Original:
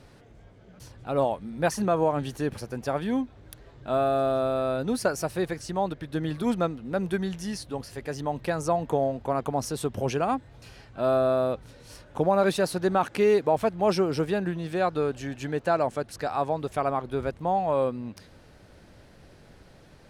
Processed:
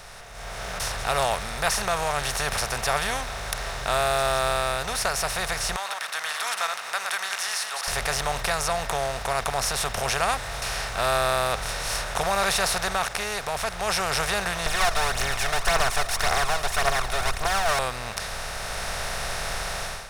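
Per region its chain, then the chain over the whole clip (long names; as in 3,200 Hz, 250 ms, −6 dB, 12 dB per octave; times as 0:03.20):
0:05.76–0:07.88: delay that plays each chunk backwards 114 ms, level −9 dB + high-pass filter 1,200 Hz 24 dB per octave + high-shelf EQ 2,000 Hz −9 dB
0:14.66–0:17.79: lower of the sound and its delayed copy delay 2.8 ms + phase shifter 1.8 Hz, delay 1.7 ms, feedback 64%
whole clip: compressor on every frequency bin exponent 0.4; guitar amp tone stack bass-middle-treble 10-0-10; automatic gain control gain up to 14.5 dB; level −6 dB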